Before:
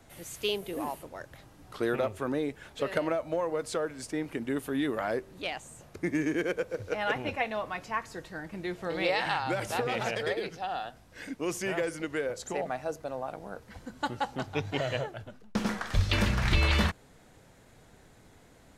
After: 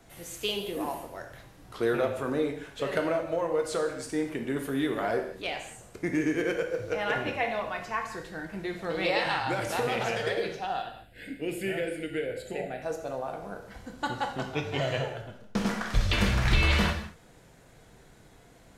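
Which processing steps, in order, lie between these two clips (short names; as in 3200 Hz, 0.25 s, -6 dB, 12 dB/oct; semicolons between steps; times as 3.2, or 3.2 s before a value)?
10.82–12.82 fixed phaser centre 2600 Hz, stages 4; non-linear reverb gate 0.26 s falling, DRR 3 dB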